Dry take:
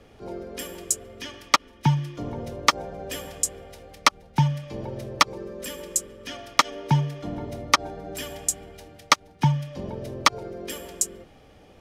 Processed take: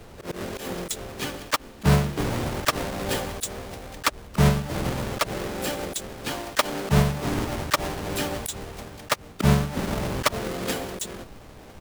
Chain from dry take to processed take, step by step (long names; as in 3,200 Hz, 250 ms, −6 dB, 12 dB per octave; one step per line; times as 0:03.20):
each half-wave held at its own peak
pitch-shifted copies added −12 semitones −5 dB, +5 semitones −6 dB, +7 semitones −8 dB
volume swells 108 ms